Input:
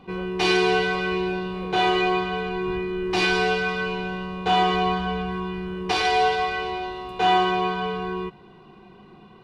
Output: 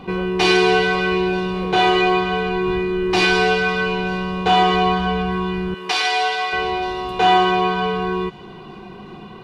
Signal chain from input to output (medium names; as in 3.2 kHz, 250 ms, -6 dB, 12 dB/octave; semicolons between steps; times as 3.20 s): 5.74–6.53 s: high-pass 1.3 kHz 6 dB/octave; in parallel at +3 dB: compression, threshold -36 dBFS, peak gain reduction 19 dB; on the sum: feedback echo behind a high-pass 930 ms, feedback 35%, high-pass 2.9 kHz, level -22 dB; trim +3.5 dB